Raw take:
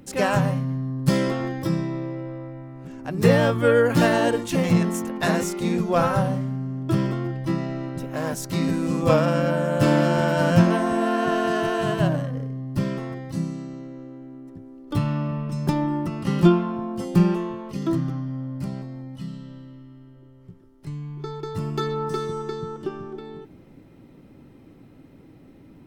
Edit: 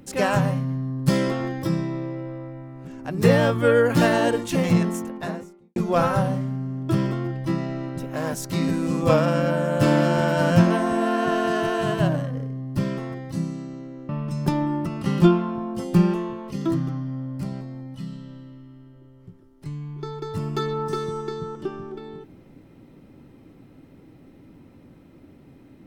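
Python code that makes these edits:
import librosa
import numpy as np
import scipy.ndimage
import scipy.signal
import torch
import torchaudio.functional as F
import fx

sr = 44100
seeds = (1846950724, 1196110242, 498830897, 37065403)

y = fx.studio_fade_out(x, sr, start_s=4.72, length_s=1.04)
y = fx.edit(y, sr, fx.cut(start_s=14.09, length_s=1.21), tone=tone)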